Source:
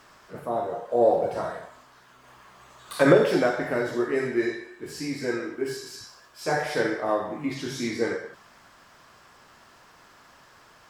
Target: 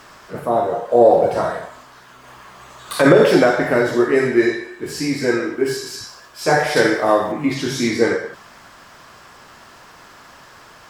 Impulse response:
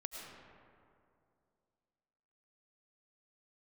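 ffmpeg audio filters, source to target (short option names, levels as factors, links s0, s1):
-filter_complex "[0:a]asettb=1/sr,asplit=3[s0][s1][s2];[s0]atrim=end=6.764[s3];[s1]atrim=start=6.76:end=7.32,asetpts=PTS-STARTPTS,afade=t=in:d=0.004:c=qsin,afade=t=out:st=0.556:d=0.004:c=qsin,highshelf=f=3900:g=8[s4];[s2]atrim=start=7.316[s5];[s3][s4]acrossfade=d=0.004:c1=hsin:c2=qsin[s6];[s6][s5]acrossfade=d=0.004:c1=qsin:c2=hsin,alimiter=level_in=3.55:limit=0.891:release=50:level=0:latency=1,volume=0.891"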